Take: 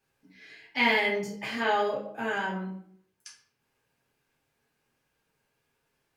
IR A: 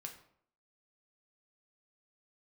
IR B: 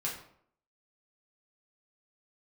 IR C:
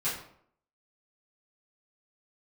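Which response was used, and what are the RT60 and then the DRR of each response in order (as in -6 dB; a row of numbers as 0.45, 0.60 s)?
B; 0.65, 0.65, 0.65 s; 2.0, -4.5, -12.0 dB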